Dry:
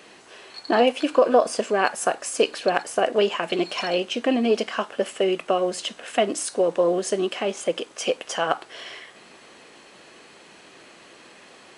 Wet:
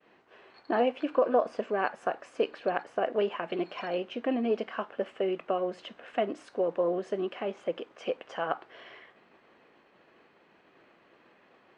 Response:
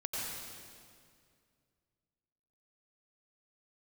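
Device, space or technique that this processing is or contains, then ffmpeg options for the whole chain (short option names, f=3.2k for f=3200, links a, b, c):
hearing-loss simulation: -af "lowpass=2.1k,agate=range=-33dB:threshold=-46dB:ratio=3:detection=peak,volume=-7.5dB"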